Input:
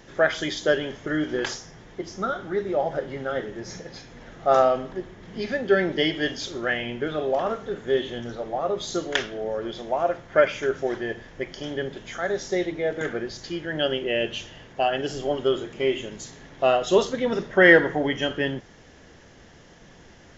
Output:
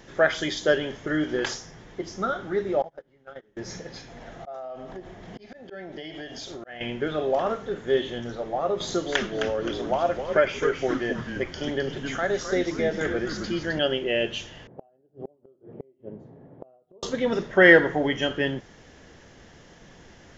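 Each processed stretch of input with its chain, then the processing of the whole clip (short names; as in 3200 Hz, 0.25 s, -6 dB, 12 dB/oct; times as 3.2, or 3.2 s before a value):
2.82–3.57 gate -26 dBFS, range -28 dB + compressor 12:1, threshold -36 dBFS
4.08–6.81 bell 700 Hz +10 dB 0.37 oct + auto swell 0.542 s + compressor 8:1, threshold -34 dBFS
8.8–13.79 frequency-shifting echo 0.261 s, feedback 38%, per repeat -140 Hz, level -8 dB + three-band squash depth 40%
14.67–17.03 Chebyshev band-pass 110–610 Hz + flipped gate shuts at -23 dBFS, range -35 dB
whole clip: dry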